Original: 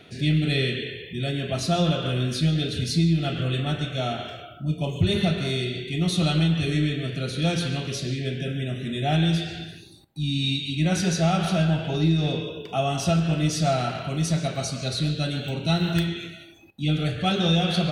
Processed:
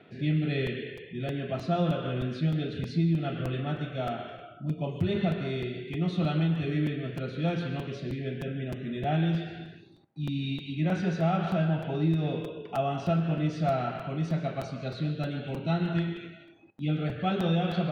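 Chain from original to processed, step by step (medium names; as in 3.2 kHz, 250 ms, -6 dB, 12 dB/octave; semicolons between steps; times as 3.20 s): band-pass 130–2000 Hz; crackling interface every 0.31 s, samples 256, repeat, from 0.66 s; trim -3.5 dB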